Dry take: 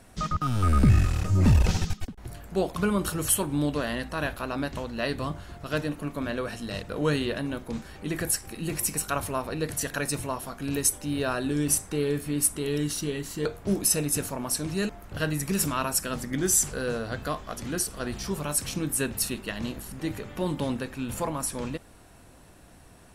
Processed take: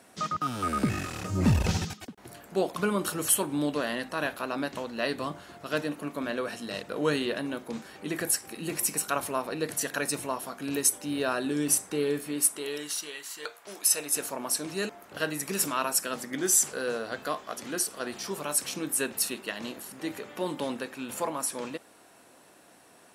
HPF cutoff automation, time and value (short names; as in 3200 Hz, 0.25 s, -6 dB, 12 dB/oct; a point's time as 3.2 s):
1.12 s 250 Hz
1.75 s 73 Hz
1.95 s 230 Hz
12.1 s 230 Hz
13.18 s 970 Hz
13.79 s 970 Hz
14.35 s 310 Hz